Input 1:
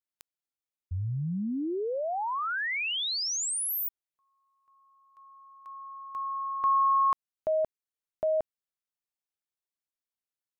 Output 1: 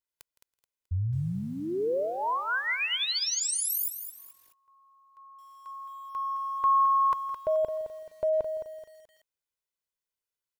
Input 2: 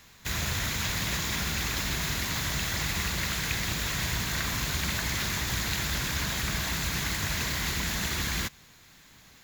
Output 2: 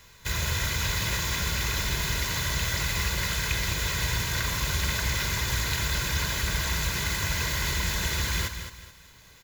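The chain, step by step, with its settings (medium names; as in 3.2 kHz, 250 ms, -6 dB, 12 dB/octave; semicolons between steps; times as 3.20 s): bass shelf 120 Hz +2 dB; comb 2 ms, depth 51%; on a send: feedback delay 164 ms, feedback 20%, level -18.5 dB; on the sum: bit-crushed delay 215 ms, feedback 35%, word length 9-bit, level -9.5 dB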